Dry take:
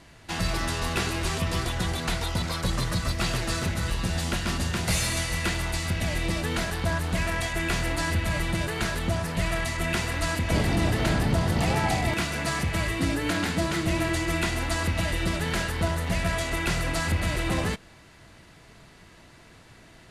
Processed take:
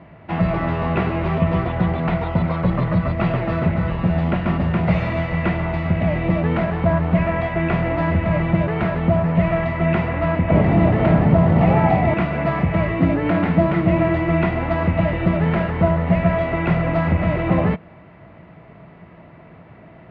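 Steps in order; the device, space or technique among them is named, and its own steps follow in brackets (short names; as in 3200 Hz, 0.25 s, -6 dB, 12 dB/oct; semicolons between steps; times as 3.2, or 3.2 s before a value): bass cabinet (speaker cabinet 72–2100 Hz, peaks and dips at 170 Hz +8 dB, 630 Hz +6 dB, 1600 Hz -8 dB); 10.09–10.64 LPF 4100 Hz 12 dB/oct; gain +7.5 dB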